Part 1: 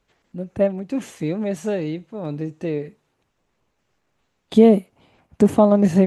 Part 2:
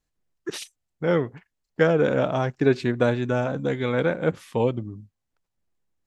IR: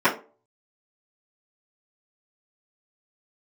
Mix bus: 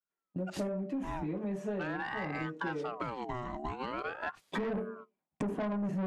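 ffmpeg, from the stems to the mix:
-filter_complex "[0:a]agate=range=-16dB:threshold=-43dB:ratio=16:detection=peak,adynamicequalizer=threshold=0.0316:dfrequency=190:dqfactor=2.6:tfrequency=190:tqfactor=2.6:attack=5:release=100:ratio=0.375:range=2:mode=boostabove:tftype=bell,volume=-11dB,asplit=2[link_01][link_02];[link_02]volume=-9.5dB[link_03];[1:a]aeval=exprs='val(0)*sin(2*PI*950*n/s+950*0.5/0.43*sin(2*PI*0.43*n/s))':channel_layout=same,volume=-4.5dB,asplit=2[link_04][link_05];[link_05]apad=whole_len=267668[link_06];[link_01][link_06]sidechaincompress=threshold=-31dB:ratio=8:attack=39:release=691[link_07];[2:a]atrim=start_sample=2205[link_08];[link_03][link_08]afir=irnorm=-1:irlink=0[link_09];[link_07][link_04][link_09]amix=inputs=3:normalize=0,agate=range=-16dB:threshold=-38dB:ratio=16:detection=peak,asoftclip=type=tanh:threshold=-15.5dB,acompressor=threshold=-33dB:ratio=10"

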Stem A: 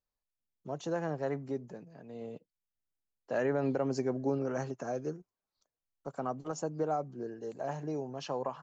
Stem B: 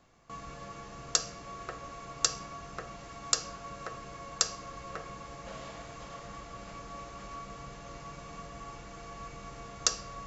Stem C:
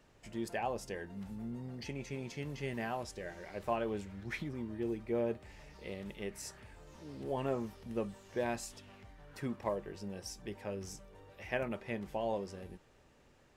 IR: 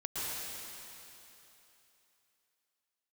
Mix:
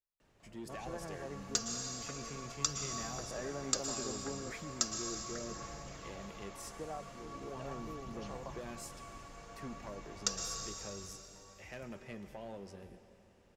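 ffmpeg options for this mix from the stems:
-filter_complex "[0:a]volume=-12dB,asplit=3[link_01][link_02][link_03];[link_01]atrim=end=4.52,asetpts=PTS-STARTPTS,afade=type=out:start_time=4.516:duration=0.004:curve=hsin[link_04];[link_02]atrim=start=4.52:end=6.79,asetpts=PTS-STARTPTS,volume=0[link_05];[link_03]atrim=start=6.79,asetpts=PTS-STARTPTS,afade=type=in:duration=0.004:curve=hsin[link_06];[link_04][link_05][link_06]concat=n=3:v=0:a=1[link_07];[1:a]aphaser=in_gain=1:out_gain=1:delay=4.3:decay=0.52:speed=0.38:type=sinusoidal,adelay=400,volume=-12dB,asplit=2[link_08][link_09];[link_09]volume=-3.5dB[link_10];[2:a]acrossover=split=300|3000[link_11][link_12][link_13];[link_12]acompressor=threshold=-38dB:ratio=6[link_14];[link_11][link_14][link_13]amix=inputs=3:normalize=0,asoftclip=type=tanh:threshold=-33.5dB,adelay=200,volume=-5.5dB,asplit=2[link_15][link_16];[link_16]volume=-14.5dB[link_17];[3:a]atrim=start_sample=2205[link_18];[link_10][link_17]amix=inputs=2:normalize=0[link_19];[link_19][link_18]afir=irnorm=-1:irlink=0[link_20];[link_07][link_08][link_15][link_20]amix=inputs=4:normalize=0,adynamicequalizer=threshold=0.00178:dfrequency=6100:dqfactor=0.7:tfrequency=6100:tqfactor=0.7:attack=5:release=100:ratio=0.375:range=2:mode=boostabove:tftype=highshelf"

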